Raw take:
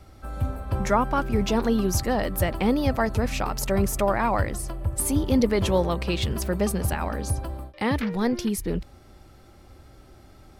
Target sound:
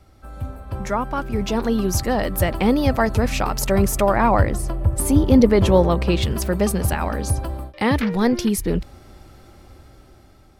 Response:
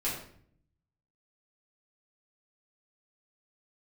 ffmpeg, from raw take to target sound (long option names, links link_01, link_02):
-filter_complex "[0:a]dynaudnorm=framelen=640:gausssize=5:maxgain=11.5dB,asettb=1/sr,asplit=3[link_01][link_02][link_03];[link_01]atrim=end=4.164[link_04];[link_02]atrim=start=4.16:end=6.23,asetpts=PTS-STARTPTS,afade=type=in:duration=0.004:curve=qsin,afade=type=out:start_time=2.066:duration=0.004:curve=qsin,tiltshelf=frequency=1500:gain=3.5[link_05];[link_03]atrim=start=6.226[link_06];[link_04][link_05]acrossfade=duration=0.004:curve1=hsin:curve2=qsin[link_07];[link_07][link_06]acrossfade=duration=0.004:curve1=qsin:curve2=hsin,volume=-3dB"